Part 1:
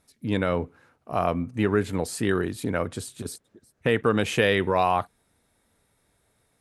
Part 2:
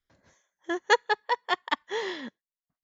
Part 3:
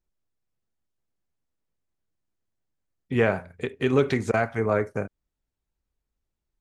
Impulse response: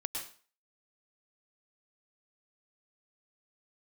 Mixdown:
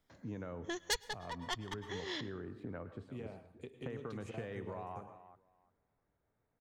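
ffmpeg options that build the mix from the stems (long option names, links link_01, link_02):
-filter_complex "[0:a]lowpass=1500,acompressor=threshold=-27dB:ratio=2.5,volume=-14dB,asplit=4[link_01][link_02][link_03][link_04];[link_02]volume=-10dB[link_05];[link_03]volume=-16dB[link_06];[1:a]asoftclip=type=tanh:threshold=-21dB,volume=3dB,asplit=2[link_07][link_08];[link_08]volume=-22.5dB[link_09];[2:a]equalizer=frequency=1600:width=1.4:gain=-12,acompressor=threshold=-26dB:ratio=6,volume=-18.5dB,asplit=2[link_10][link_11];[link_11]volume=-7.5dB[link_12];[link_04]apad=whole_len=124840[link_13];[link_07][link_13]sidechaincompress=threshold=-58dB:ratio=8:attack=46:release=107[link_14];[3:a]atrim=start_sample=2205[link_15];[link_05][link_09][link_12]amix=inputs=3:normalize=0[link_16];[link_16][link_15]afir=irnorm=-1:irlink=0[link_17];[link_06]aecho=0:1:346|692|1038:1|0.17|0.0289[link_18];[link_01][link_14][link_10][link_17][link_18]amix=inputs=5:normalize=0,acrossover=split=150|3000[link_19][link_20][link_21];[link_20]acompressor=threshold=-41dB:ratio=5[link_22];[link_19][link_22][link_21]amix=inputs=3:normalize=0"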